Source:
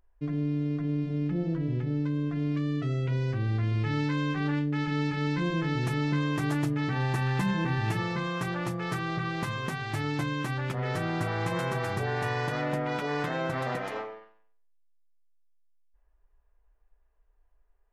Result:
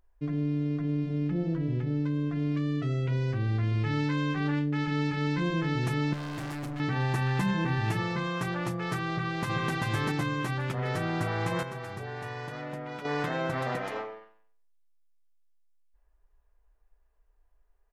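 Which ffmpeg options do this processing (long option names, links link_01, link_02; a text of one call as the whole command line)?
ffmpeg -i in.wav -filter_complex "[0:a]asettb=1/sr,asplit=3[link_01][link_02][link_03];[link_01]atrim=end=6.134[link_04];[link_02]atrim=start=6.13:end=6.8,asetpts=PTS-STARTPTS,afade=type=in:duration=0.004:curve=qsin,afade=type=out:start_time=0.666:duration=0.004:curve=qsin,asoftclip=type=hard:threshold=-34dB[link_05];[link_03]atrim=start=6.796[link_06];[link_04][link_05]acrossfade=duration=0.004:curve1=hsin:curve2=qsin[link_07];[link_07][link_06]acrossfade=duration=0.004:curve1=qsin:curve2=hsin,asplit=2[link_08][link_09];[link_09]afade=type=in:start_time=9.1:duration=0.01,afade=type=out:start_time=9.72:duration=0.01,aecho=0:1:390|780|1170|1560|1950:0.891251|0.311938|0.109178|0.0382124|0.0133743[link_10];[link_08][link_10]amix=inputs=2:normalize=0,asplit=3[link_11][link_12][link_13];[link_11]atrim=end=11.632[link_14];[link_12]atrim=start=11.628:end=13.052,asetpts=PTS-STARTPTS,volume=-8dB[link_15];[link_13]atrim=start=13.048[link_16];[link_14][link_15]acrossfade=duration=0.004:curve1=hsin:curve2=hsin[link_17];[link_17][link_16]acrossfade=duration=0.004:curve1=hsin:curve2=hsin" out.wav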